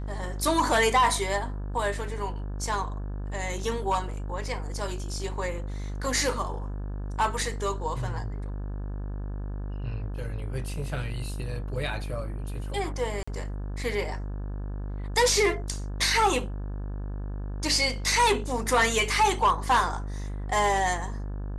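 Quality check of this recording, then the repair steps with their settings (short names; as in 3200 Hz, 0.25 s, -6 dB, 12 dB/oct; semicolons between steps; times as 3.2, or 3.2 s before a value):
buzz 50 Hz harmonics 35 -33 dBFS
13.23–13.28 gap 45 ms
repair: de-hum 50 Hz, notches 35; interpolate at 13.23, 45 ms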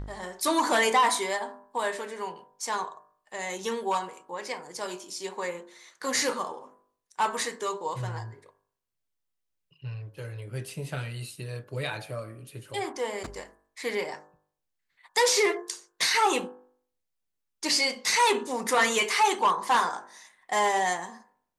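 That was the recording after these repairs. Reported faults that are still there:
none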